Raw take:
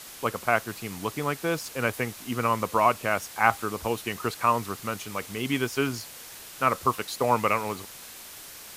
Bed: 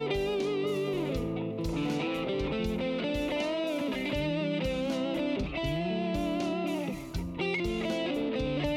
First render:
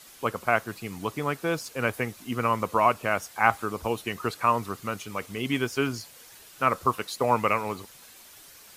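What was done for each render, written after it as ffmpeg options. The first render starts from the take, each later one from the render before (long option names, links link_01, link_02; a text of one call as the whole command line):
ffmpeg -i in.wav -af "afftdn=noise_reduction=8:noise_floor=-44" out.wav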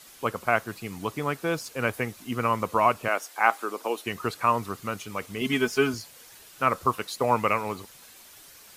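ffmpeg -i in.wav -filter_complex "[0:a]asettb=1/sr,asplit=3[link_01][link_02][link_03];[link_01]atrim=end=3.084[link_04];[link_02]atrim=start=3.08:end=4.06,asetpts=PTS-STARTPTS,afade=type=in:duration=0.004:curve=qsin,afade=type=out:start_time=0.976:duration=0.004:curve=qsin,highpass=frequency=280:width=0.5412,highpass=frequency=280:width=1.3066[link_05];[link_03]atrim=start=4.056[link_06];[link_04][link_05]acrossfade=duration=0.004:curve1=hsin:curve2=qsin[link_07];[link_07][link_06]acrossfade=duration=0.004:curve1=qsin:curve2=hsin,asettb=1/sr,asplit=3[link_08][link_09][link_10];[link_08]atrim=end=5.414[link_11];[link_09]atrim=start=5.41:end=5.94,asetpts=PTS-STARTPTS,afade=type=in:duration=0.004:curve=qsin,afade=type=out:start_time=0.526:duration=0.004:curve=qsin,aecho=1:1:4.7:0.88,atrim=end_sample=23373[link_12];[link_10]atrim=start=5.936[link_13];[link_11][link_12]acrossfade=duration=0.004:curve1=hsin:curve2=qsin[link_14];[link_14][link_13]acrossfade=duration=0.004:curve1=qsin:curve2=hsin" out.wav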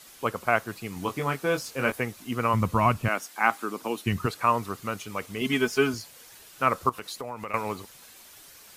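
ffmpeg -i in.wav -filter_complex "[0:a]asettb=1/sr,asplit=3[link_01][link_02][link_03];[link_01]atrim=end=0.944[link_04];[link_02]atrim=start=0.94:end=1.92,asetpts=PTS-STARTPTS,afade=type=in:duration=0.004:curve=qsin,afade=type=out:start_time=0.976:duration=0.004:curve=qsin,asplit=2[link_05][link_06];[link_06]adelay=22,volume=-5dB[link_07];[link_05][link_07]amix=inputs=2:normalize=0,atrim=end_sample=43218[link_08];[link_03]atrim=start=1.916[link_09];[link_04][link_08]acrossfade=duration=0.004:curve1=hsin:curve2=qsin[link_10];[link_10][link_09]acrossfade=duration=0.004:curve1=qsin:curve2=hsin,asplit=3[link_11][link_12][link_13];[link_11]afade=type=out:start_time=2.53:duration=0.02[link_14];[link_12]asubboost=boost=9:cutoff=180,afade=type=in:start_time=2.53:duration=0.02,afade=type=out:start_time=4.25:duration=0.02[link_15];[link_13]afade=type=in:start_time=4.25:duration=0.02[link_16];[link_14][link_15][link_16]amix=inputs=3:normalize=0,asettb=1/sr,asplit=3[link_17][link_18][link_19];[link_17]atrim=end=6.894[link_20];[link_18]atrim=start=6.89:end=7.54,asetpts=PTS-STARTPTS,afade=type=in:duration=0.004:curve=qsin,afade=type=out:start_time=0.646:duration=0.004:curve=qsin,acompressor=threshold=-32dB:ratio=6:attack=3.2:release=140:knee=1:detection=peak[link_21];[link_19]atrim=start=7.536[link_22];[link_20][link_21]acrossfade=duration=0.004:curve1=hsin:curve2=qsin[link_23];[link_23][link_22]acrossfade=duration=0.004:curve1=qsin:curve2=hsin" out.wav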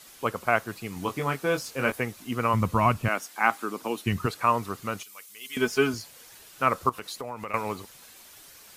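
ffmpeg -i in.wav -filter_complex "[0:a]asettb=1/sr,asplit=3[link_01][link_02][link_03];[link_01]atrim=end=5.034[link_04];[link_02]atrim=start=5.03:end=5.57,asetpts=PTS-STARTPTS,afade=type=in:duration=0.004:curve=qsin,afade=type=out:start_time=0.536:duration=0.004:curve=qsin,aderivative[link_05];[link_03]atrim=start=5.566[link_06];[link_04][link_05]acrossfade=duration=0.004:curve1=hsin:curve2=qsin[link_07];[link_07][link_06]acrossfade=duration=0.004:curve1=qsin:curve2=hsin" out.wav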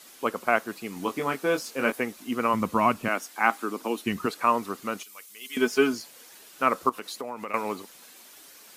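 ffmpeg -i in.wav -af "lowshelf=frequency=160:width_type=q:width=1.5:gain=-12.5" out.wav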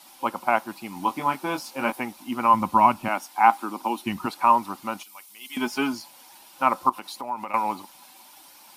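ffmpeg -i in.wav -af "superequalizer=7b=0.282:9b=3.16:11b=0.631:15b=0.631" out.wav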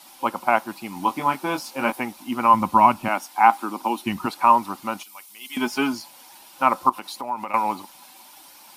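ffmpeg -i in.wav -af "volume=2.5dB,alimiter=limit=-2dB:level=0:latency=1" out.wav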